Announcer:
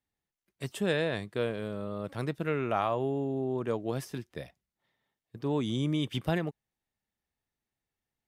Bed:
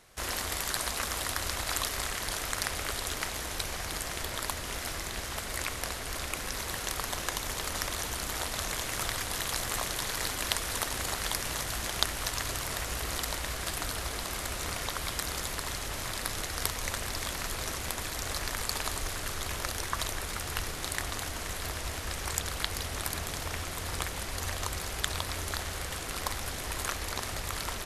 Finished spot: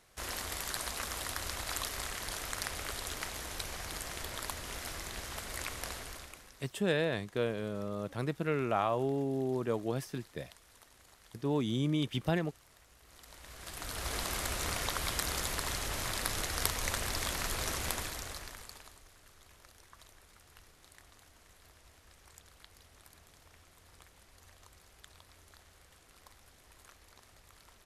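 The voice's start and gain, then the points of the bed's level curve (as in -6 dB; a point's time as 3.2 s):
6.00 s, -1.5 dB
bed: 5.99 s -5.5 dB
6.72 s -27.5 dB
13 s -27.5 dB
14.14 s -0.5 dB
17.93 s -0.5 dB
19.04 s -24.5 dB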